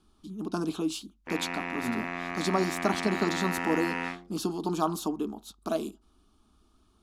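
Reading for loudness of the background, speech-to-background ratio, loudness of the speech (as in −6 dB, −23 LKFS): −33.5 LKFS, 1.5 dB, −32.0 LKFS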